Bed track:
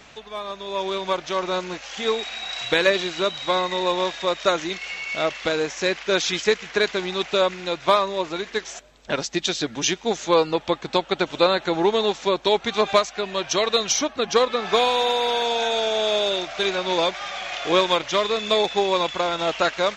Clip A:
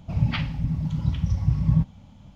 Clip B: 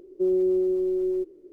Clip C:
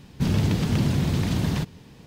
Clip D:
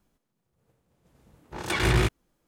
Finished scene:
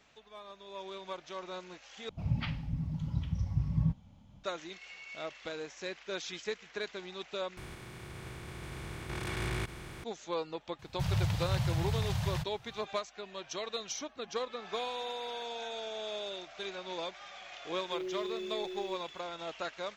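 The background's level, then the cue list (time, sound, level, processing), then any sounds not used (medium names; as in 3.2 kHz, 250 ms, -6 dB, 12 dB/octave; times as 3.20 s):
bed track -17.5 dB
2.09 s: replace with A -9.5 dB
7.57 s: replace with D -16.5 dB + spectral levelling over time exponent 0.2
10.79 s: add C -6.5 dB + Chebyshev band-stop 130–710 Hz
17.72 s: add B -16 dB + bit crusher 9-bit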